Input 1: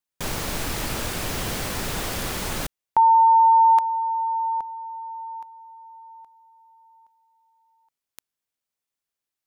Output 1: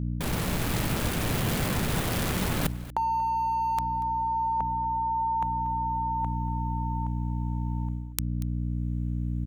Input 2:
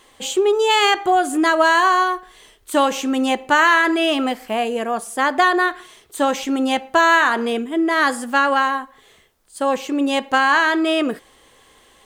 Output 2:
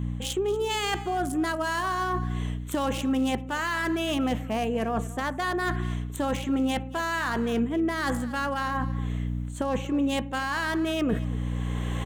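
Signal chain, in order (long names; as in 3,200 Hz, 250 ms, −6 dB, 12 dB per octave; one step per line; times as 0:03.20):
adaptive Wiener filter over 9 samples
camcorder AGC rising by 17 dB per second, up to +23 dB
mains hum 60 Hz, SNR 12 dB
high-shelf EQ 3,900 Hz +11 dB
reversed playback
downward compressor 6 to 1, threshold −24 dBFS
reversed playback
parametric band 150 Hz +8.5 dB 1.8 octaves
on a send: single-tap delay 236 ms −17.5 dB
on the sum: level −3 dB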